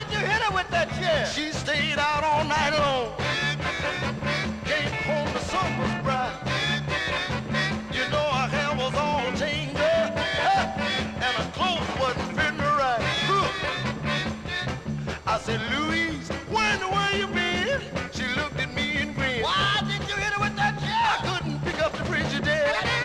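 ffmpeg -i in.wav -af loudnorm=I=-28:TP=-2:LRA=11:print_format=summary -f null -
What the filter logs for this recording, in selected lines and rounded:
Input Integrated:    -25.0 LUFS
Input True Peak:     -13.0 dBTP
Input LRA:             1.9 LU
Input Threshold:     -35.0 LUFS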